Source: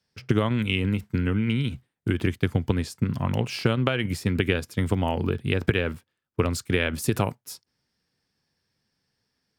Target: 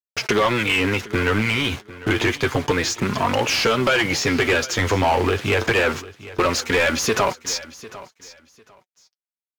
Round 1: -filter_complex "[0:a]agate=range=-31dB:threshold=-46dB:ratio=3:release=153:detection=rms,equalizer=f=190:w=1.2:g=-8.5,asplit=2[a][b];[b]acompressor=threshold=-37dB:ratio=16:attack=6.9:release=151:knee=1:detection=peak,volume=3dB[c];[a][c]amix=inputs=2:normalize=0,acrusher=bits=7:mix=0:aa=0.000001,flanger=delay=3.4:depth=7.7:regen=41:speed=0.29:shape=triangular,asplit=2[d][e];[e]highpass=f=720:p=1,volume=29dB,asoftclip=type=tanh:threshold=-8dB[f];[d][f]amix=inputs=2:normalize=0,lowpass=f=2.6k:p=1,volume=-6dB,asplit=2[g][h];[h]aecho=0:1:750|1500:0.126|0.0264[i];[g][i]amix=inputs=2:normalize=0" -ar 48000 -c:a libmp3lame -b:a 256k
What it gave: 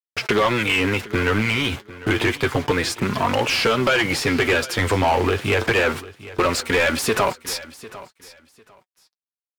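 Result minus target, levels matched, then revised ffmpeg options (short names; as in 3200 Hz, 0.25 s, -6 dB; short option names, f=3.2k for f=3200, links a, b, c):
8000 Hz band -3.0 dB
-filter_complex "[0:a]agate=range=-31dB:threshold=-46dB:ratio=3:release=153:detection=rms,equalizer=f=190:w=1.2:g=-8.5,asplit=2[a][b];[b]acompressor=threshold=-37dB:ratio=16:attack=6.9:release=151:knee=1:detection=peak,lowpass=f=6.6k:t=q:w=7.7,volume=3dB[c];[a][c]amix=inputs=2:normalize=0,acrusher=bits=7:mix=0:aa=0.000001,flanger=delay=3.4:depth=7.7:regen=41:speed=0.29:shape=triangular,asplit=2[d][e];[e]highpass=f=720:p=1,volume=29dB,asoftclip=type=tanh:threshold=-8dB[f];[d][f]amix=inputs=2:normalize=0,lowpass=f=2.6k:p=1,volume=-6dB,asplit=2[g][h];[h]aecho=0:1:750|1500:0.126|0.0264[i];[g][i]amix=inputs=2:normalize=0" -ar 48000 -c:a libmp3lame -b:a 256k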